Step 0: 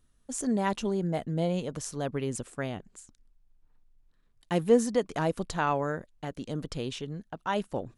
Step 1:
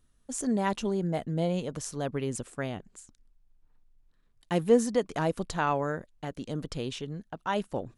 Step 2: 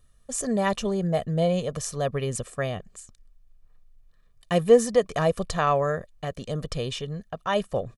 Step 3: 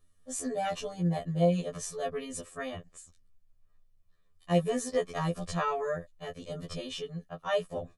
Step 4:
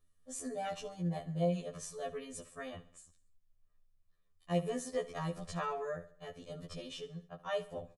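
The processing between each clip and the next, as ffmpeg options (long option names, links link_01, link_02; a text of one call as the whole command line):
ffmpeg -i in.wav -af anull out.wav
ffmpeg -i in.wav -af "aecho=1:1:1.7:0.63,volume=4dB" out.wav
ffmpeg -i in.wav -af "afftfilt=real='re*2*eq(mod(b,4),0)':imag='im*2*eq(mod(b,4),0)':win_size=2048:overlap=0.75,volume=-4dB" out.wav
ffmpeg -i in.wav -af "aecho=1:1:69|138|207|276:0.141|0.0678|0.0325|0.0156,volume=-7dB" out.wav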